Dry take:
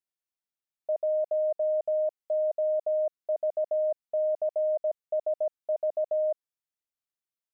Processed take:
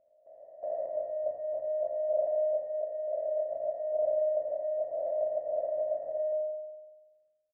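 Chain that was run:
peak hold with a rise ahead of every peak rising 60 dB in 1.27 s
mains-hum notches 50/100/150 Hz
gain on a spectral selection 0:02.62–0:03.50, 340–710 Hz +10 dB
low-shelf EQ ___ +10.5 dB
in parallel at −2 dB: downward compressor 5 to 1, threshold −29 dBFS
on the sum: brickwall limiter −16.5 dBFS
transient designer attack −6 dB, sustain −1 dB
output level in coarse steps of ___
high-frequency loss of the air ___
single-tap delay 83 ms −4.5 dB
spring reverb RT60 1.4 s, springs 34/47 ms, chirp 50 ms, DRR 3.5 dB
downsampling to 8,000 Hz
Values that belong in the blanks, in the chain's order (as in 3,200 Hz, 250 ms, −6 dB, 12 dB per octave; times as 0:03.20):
390 Hz, 17 dB, 370 metres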